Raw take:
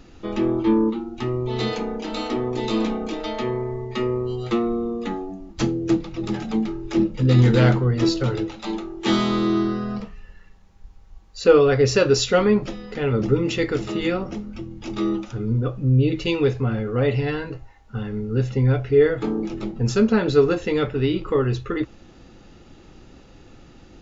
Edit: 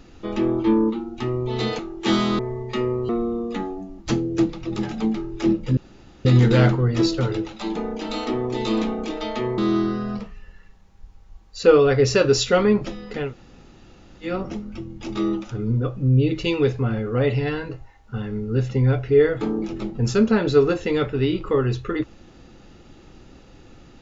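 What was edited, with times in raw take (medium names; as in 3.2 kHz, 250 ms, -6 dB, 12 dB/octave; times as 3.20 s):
1.79–3.61 s: swap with 8.79–9.39 s
4.31–4.60 s: delete
7.28 s: insert room tone 0.48 s
13.07–14.09 s: room tone, crossfade 0.16 s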